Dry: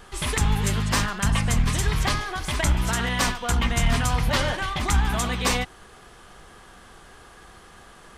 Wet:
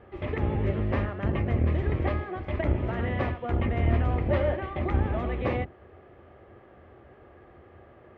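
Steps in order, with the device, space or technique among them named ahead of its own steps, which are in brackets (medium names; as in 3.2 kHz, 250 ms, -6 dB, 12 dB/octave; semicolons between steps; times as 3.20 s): sub-octave bass pedal (octave divider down 1 oct, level +2 dB; cabinet simulation 79–2100 Hz, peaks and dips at 81 Hz +9 dB, 170 Hz -7 dB, 360 Hz +8 dB, 580 Hz +9 dB, 1 kHz -7 dB, 1.5 kHz -9 dB); trim -4.5 dB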